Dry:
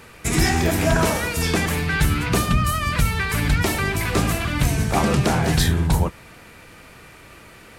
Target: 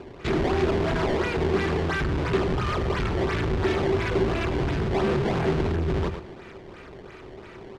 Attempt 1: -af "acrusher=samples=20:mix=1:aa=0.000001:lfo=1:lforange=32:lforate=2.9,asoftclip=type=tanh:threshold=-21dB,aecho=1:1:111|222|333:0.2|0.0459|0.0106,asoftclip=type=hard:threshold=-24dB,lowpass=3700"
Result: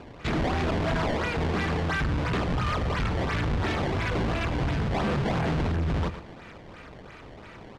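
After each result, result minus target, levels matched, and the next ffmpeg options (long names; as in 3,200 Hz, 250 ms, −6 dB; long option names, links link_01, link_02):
soft clipping: distortion +12 dB; 500 Hz band −4.0 dB
-af "acrusher=samples=20:mix=1:aa=0.000001:lfo=1:lforange=32:lforate=2.9,asoftclip=type=tanh:threshold=-10.5dB,aecho=1:1:111|222|333:0.2|0.0459|0.0106,asoftclip=type=hard:threshold=-24dB,lowpass=3700"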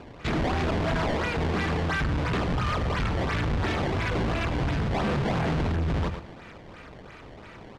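500 Hz band −4.0 dB
-af "acrusher=samples=20:mix=1:aa=0.000001:lfo=1:lforange=32:lforate=2.9,asoftclip=type=tanh:threshold=-10.5dB,aecho=1:1:111|222|333:0.2|0.0459|0.0106,asoftclip=type=hard:threshold=-24dB,lowpass=3700,equalizer=frequency=380:width_type=o:width=0.23:gain=14"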